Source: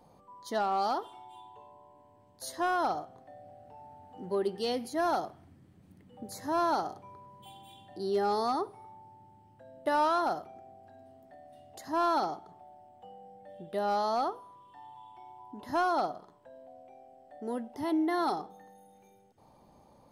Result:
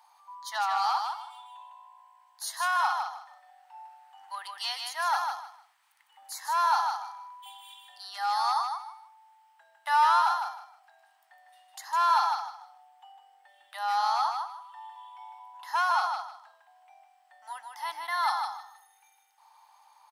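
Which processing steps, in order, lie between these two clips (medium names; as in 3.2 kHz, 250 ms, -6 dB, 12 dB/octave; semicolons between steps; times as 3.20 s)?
elliptic high-pass 870 Hz, stop band 50 dB; feedback delay 154 ms, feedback 23%, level -5 dB; trim +6.5 dB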